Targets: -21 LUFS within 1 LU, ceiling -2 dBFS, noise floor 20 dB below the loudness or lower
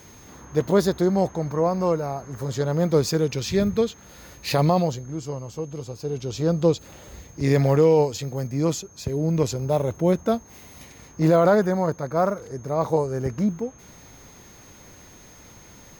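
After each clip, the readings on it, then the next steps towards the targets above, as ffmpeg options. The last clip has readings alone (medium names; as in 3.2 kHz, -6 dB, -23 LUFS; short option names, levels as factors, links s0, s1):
steady tone 6.4 kHz; tone level -51 dBFS; loudness -23.5 LUFS; peak level -8.0 dBFS; loudness target -21.0 LUFS
-> -af "bandreject=f=6400:w=30"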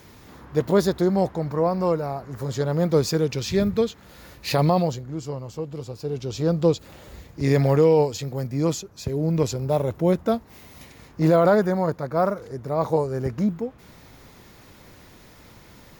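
steady tone not found; loudness -23.5 LUFS; peak level -8.0 dBFS; loudness target -21.0 LUFS
-> -af "volume=1.33"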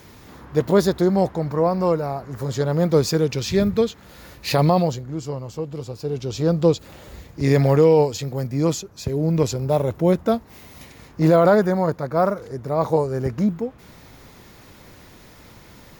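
loudness -21.0 LUFS; peak level -5.5 dBFS; noise floor -47 dBFS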